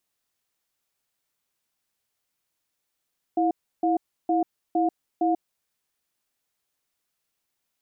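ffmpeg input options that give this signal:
ffmpeg -f lavfi -i "aevalsrc='0.0794*(sin(2*PI*329*t)+sin(2*PI*714*t))*clip(min(mod(t,0.46),0.14-mod(t,0.46))/0.005,0,1)':duration=2.1:sample_rate=44100" out.wav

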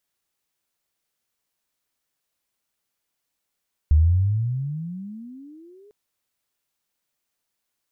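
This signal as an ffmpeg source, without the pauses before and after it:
ffmpeg -f lavfi -i "aevalsrc='pow(10,(-11-36.5*t/2)/20)*sin(2*PI*72.9*2/(30.5*log(2)/12)*(exp(30.5*log(2)/12*t/2)-1))':duration=2:sample_rate=44100" out.wav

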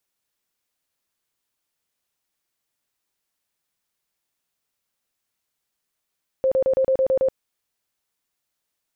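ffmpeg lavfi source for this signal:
ffmpeg -f lavfi -i "aevalsrc='0.168*sin(2*PI*528*mod(t,0.11))*lt(mod(t,0.11),40/528)':duration=0.88:sample_rate=44100" out.wav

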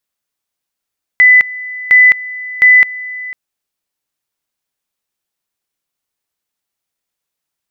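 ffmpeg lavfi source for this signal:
ffmpeg -f lavfi -i "aevalsrc='pow(10,(-2.5-19*gte(mod(t,0.71),0.21))/20)*sin(2*PI*2000*t)':duration=2.13:sample_rate=44100" out.wav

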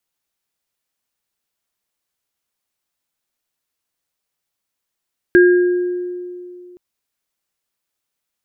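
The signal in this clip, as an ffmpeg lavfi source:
ffmpeg -f lavfi -i "aevalsrc='0.531*pow(10,-3*t/2.56)*sin(2*PI*357*t)+0.266*pow(10,-3*t/1.01)*sin(2*PI*1620*t)':duration=1.42:sample_rate=44100" out.wav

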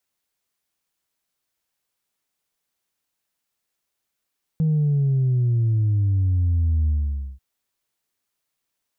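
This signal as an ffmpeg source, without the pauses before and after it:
ffmpeg -f lavfi -i "aevalsrc='0.141*clip((2.79-t)/0.51,0,1)*tanh(1.06*sin(2*PI*160*2.79/log(65/160)*(exp(log(65/160)*t/2.79)-1)))/tanh(1.06)':duration=2.79:sample_rate=44100" out.wav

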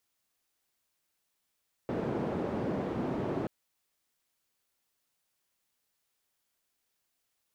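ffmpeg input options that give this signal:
ffmpeg -f lavfi -i "anoisesrc=color=white:duration=1.58:sample_rate=44100:seed=1,highpass=frequency=130,lowpass=frequency=410,volume=-9.8dB" out.wav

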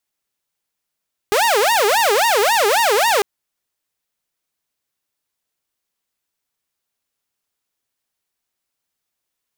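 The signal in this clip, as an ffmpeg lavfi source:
ffmpeg -f lavfi -i "aevalsrc='0.299*(2*mod((670.5*t-270.5/(2*PI*3.7)*sin(2*PI*3.7*t)),1)-1)':duration=1.9:sample_rate=44100" out.wav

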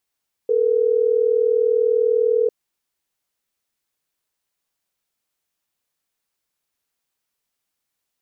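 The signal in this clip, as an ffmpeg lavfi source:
ffmpeg -f lavfi -i "aevalsrc='0.133*(sin(2*PI*440*t)+sin(2*PI*480*t))*clip(min(mod(t,6),2-mod(t,6))/0.005,0,1)':duration=3.12:sample_rate=44100" out.wav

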